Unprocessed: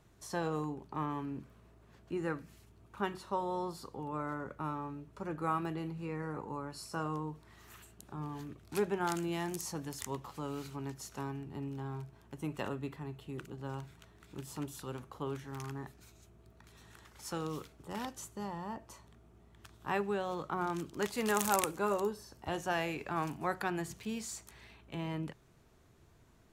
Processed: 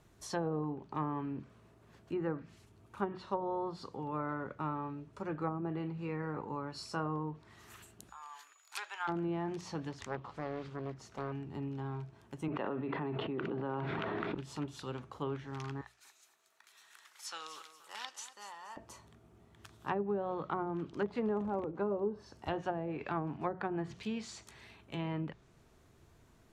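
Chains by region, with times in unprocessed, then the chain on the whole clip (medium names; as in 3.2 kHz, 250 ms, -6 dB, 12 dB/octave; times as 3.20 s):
8.08–9.07 s: high-pass 950 Hz 24 dB/octave + whistle 6.9 kHz -67 dBFS
9.91–11.32 s: low-pass 2.3 kHz 6 dB/octave + loudspeaker Doppler distortion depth 0.67 ms
12.48–14.35 s: high-pass 250 Hz + tape spacing loss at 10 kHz 26 dB + level flattener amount 100%
15.81–18.77 s: high-pass 1.2 kHz + feedback delay 238 ms, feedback 38%, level -12 dB
whole clip: dynamic bell 3.8 kHz, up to +5 dB, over -56 dBFS, Q 1.1; low-pass that closes with the level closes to 510 Hz, closed at -29 dBFS; hum notches 60/120/180 Hz; trim +1 dB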